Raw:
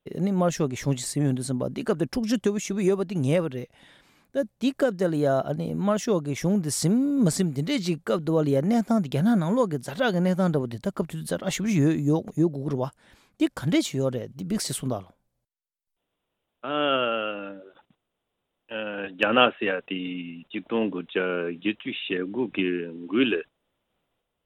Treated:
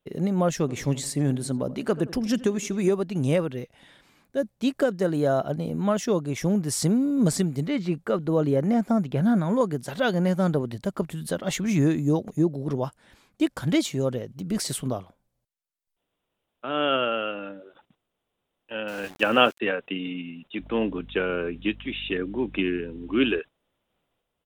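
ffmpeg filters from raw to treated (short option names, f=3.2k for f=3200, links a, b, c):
-filter_complex "[0:a]asplit=3[a][b][c];[a]afade=t=out:st=0.67:d=0.02[d];[b]asplit=2[e][f];[f]adelay=84,lowpass=f=2k:p=1,volume=-17dB,asplit=2[g][h];[h]adelay=84,lowpass=f=2k:p=1,volume=0.52,asplit=2[i][j];[j]adelay=84,lowpass=f=2k:p=1,volume=0.52,asplit=2[k][l];[l]adelay=84,lowpass=f=2k:p=1,volume=0.52,asplit=2[m][n];[n]adelay=84,lowpass=f=2k:p=1,volume=0.52[o];[e][g][i][k][m][o]amix=inputs=6:normalize=0,afade=t=in:st=0.67:d=0.02,afade=t=out:st=2.88:d=0.02[p];[c]afade=t=in:st=2.88:d=0.02[q];[d][p][q]amix=inputs=3:normalize=0,asettb=1/sr,asplit=3[r][s][t];[r]atrim=end=7.604[u];[s]atrim=start=7.6:end=9.61,asetpts=PTS-STARTPTS,afade=t=in:d=0.004:c=qsin,afade=t=out:st=2.006:d=0.004:c=qsin,acrossover=split=2600[v][w];[w]acompressor=threshold=-51dB:ratio=4:attack=1:release=60[x];[v][x]amix=inputs=2:normalize=0[y];[t]atrim=start=9.606[z];[u][y]acrossfade=d=0.004:c1=hsin:c2=qsin[aa];[aa][z]acrossfade=d=0.004:c1=qsin:c2=hsin,asettb=1/sr,asplit=3[ab][ac][ad];[ab]atrim=end=18.884[ae];[ac]atrim=start=18.88:end=19.6,asetpts=PTS-STARTPTS,afade=t=in:d=0.004:c=qsin,afade=t=out:st=0.716:d=0.004:c=qsin,aeval=exprs='val(0)*gte(abs(val(0)),0.0112)':c=same[af];[ad]atrim=start=19.596[ag];[ae][af]acrossfade=d=0.004:c1=hsin:c2=qsin[ah];[ah][ag]acrossfade=d=0.004:c1=qsin:c2=hsin,asettb=1/sr,asplit=3[ai][aj][ak];[ai]atrim=end=20.604[al];[aj]atrim=start=20.6:end=23.39,asetpts=PTS-STARTPTS,afade=t=in:d=0.004:c=qsin,afade=t=out:st=2.786:d=0.004:c=qsin,aeval=exprs='val(0)+0.00631*(sin(2*PI*50*n/s)+sin(2*PI*2*50*n/s)/2+sin(2*PI*3*50*n/s)/3+sin(2*PI*4*50*n/s)/4+sin(2*PI*5*50*n/s)/5)':c=same[am];[ak]atrim=start=23.386[an];[al][am]acrossfade=d=0.004:c1=hsin:c2=qsin[ao];[ao][an]acrossfade=d=0.004:c1=qsin:c2=hsin"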